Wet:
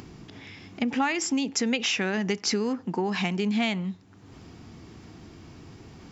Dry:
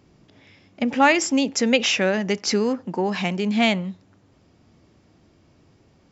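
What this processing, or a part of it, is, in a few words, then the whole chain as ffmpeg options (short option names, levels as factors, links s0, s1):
upward and downward compression: -af "equalizer=f=570:w=5.4:g=-11.5,acompressor=mode=upward:threshold=0.0178:ratio=2.5,acompressor=threshold=0.0708:ratio=5"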